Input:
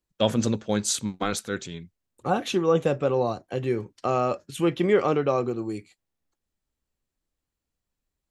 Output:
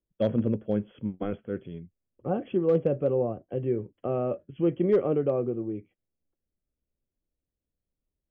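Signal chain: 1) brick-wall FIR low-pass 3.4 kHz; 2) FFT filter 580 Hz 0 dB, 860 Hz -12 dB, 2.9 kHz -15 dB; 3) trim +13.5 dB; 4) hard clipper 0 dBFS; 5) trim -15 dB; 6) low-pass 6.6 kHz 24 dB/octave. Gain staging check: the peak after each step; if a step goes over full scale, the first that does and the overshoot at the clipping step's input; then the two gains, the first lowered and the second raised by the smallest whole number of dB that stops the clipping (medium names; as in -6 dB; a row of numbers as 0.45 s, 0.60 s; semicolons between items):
-7.5 dBFS, -10.5 dBFS, +3.0 dBFS, 0.0 dBFS, -15.0 dBFS, -15.0 dBFS; step 3, 3.0 dB; step 3 +10.5 dB, step 5 -12 dB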